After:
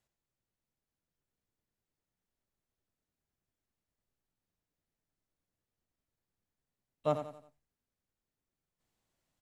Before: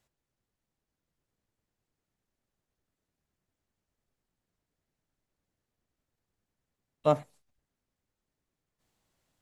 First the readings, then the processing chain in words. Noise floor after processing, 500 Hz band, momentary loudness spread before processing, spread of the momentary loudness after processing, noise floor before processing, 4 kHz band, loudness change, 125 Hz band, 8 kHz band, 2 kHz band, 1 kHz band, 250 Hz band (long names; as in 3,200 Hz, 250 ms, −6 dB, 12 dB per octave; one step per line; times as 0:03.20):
below −85 dBFS, −6.0 dB, 3 LU, 8 LU, below −85 dBFS, −6.0 dB, −6.0 dB, −6.0 dB, can't be measured, −6.0 dB, −6.0 dB, −6.0 dB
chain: repeating echo 89 ms, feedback 39%, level −9 dB
level −6.5 dB